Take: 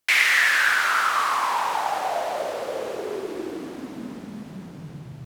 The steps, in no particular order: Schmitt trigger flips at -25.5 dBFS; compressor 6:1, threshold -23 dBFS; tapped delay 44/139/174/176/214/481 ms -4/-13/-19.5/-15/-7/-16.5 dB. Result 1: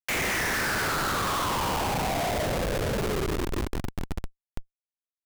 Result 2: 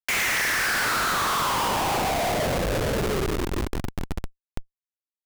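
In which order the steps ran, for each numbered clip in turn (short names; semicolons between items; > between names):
compressor > tapped delay > Schmitt trigger; tapped delay > Schmitt trigger > compressor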